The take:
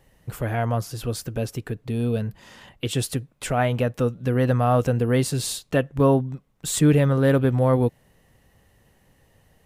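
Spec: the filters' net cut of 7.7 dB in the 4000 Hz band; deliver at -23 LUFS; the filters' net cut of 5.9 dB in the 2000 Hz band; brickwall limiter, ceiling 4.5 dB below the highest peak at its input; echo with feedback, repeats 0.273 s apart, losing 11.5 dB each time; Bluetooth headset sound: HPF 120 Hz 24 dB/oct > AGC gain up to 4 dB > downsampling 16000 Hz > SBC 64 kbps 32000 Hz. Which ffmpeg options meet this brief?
-af "equalizer=f=2k:t=o:g=-6,equalizer=f=4k:t=o:g=-8,alimiter=limit=-13dB:level=0:latency=1,highpass=f=120:w=0.5412,highpass=f=120:w=1.3066,aecho=1:1:273|546|819:0.266|0.0718|0.0194,dynaudnorm=m=4dB,aresample=16000,aresample=44100,volume=3dB" -ar 32000 -c:a sbc -b:a 64k

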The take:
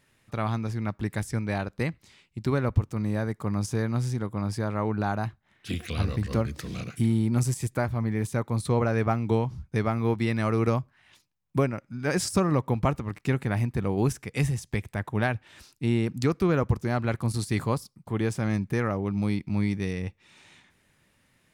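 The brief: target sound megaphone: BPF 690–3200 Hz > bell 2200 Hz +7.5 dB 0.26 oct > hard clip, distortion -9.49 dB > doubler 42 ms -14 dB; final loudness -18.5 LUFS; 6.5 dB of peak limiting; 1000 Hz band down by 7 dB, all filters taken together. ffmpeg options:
-filter_complex "[0:a]equalizer=f=1k:t=o:g=-8,alimiter=limit=-17.5dB:level=0:latency=1,highpass=690,lowpass=3.2k,equalizer=f=2.2k:t=o:w=0.26:g=7.5,asoftclip=type=hard:threshold=-32.5dB,asplit=2[a][b];[b]adelay=42,volume=-14dB[c];[a][c]amix=inputs=2:normalize=0,volume=23dB"

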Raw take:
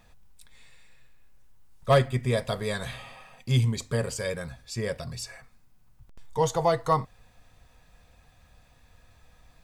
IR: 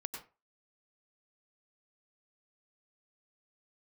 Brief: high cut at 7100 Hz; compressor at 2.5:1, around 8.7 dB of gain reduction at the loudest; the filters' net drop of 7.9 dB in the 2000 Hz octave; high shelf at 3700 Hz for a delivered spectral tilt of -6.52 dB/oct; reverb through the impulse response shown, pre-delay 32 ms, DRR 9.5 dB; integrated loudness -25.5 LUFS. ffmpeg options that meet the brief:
-filter_complex "[0:a]lowpass=7.1k,equalizer=f=2k:t=o:g=-8.5,highshelf=f=3.7k:g=-6,acompressor=threshold=-29dB:ratio=2.5,asplit=2[a][b];[1:a]atrim=start_sample=2205,adelay=32[c];[b][c]afir=irnorm=-1:irlink=0,volume=-8.5dB[d];[a][d]amix=inputs=2:normalize=0,volume=8.5dB"

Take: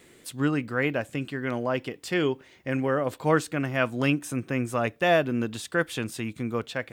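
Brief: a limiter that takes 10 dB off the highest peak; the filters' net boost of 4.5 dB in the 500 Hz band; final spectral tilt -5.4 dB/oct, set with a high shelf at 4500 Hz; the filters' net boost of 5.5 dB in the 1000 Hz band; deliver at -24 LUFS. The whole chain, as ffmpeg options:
-af "equalizer=f=500:t=o:g=3.5,equalizer=f=1k:t=o:g=7,highshelf=f=4.5k:g=-7,volume=3.5dB,alimiter=limit=-11.5dB:level=0:latency=1"

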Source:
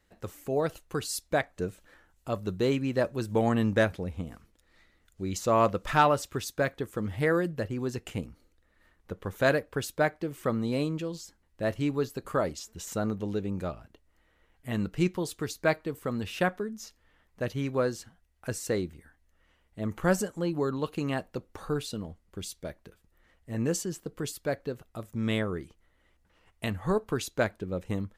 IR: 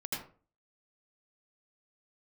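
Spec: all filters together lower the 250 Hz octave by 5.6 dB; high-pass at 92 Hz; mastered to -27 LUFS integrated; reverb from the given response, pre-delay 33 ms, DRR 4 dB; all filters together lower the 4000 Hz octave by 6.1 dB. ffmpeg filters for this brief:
-filter_complex "[0:a]highpass=92,equalizer=f=250:t=o:g=-7.5,equalizer=f=4k:t=o:g=-8,asplit=2[a][b];[1:a]atrim=start_sample=2205,adelay=33[c];[b][c]afir=irnorm=-1:irlink=0,volume=-6.5dB[d];[a][d]amix=inputs=2:normalize=0,volume=4.5dB"

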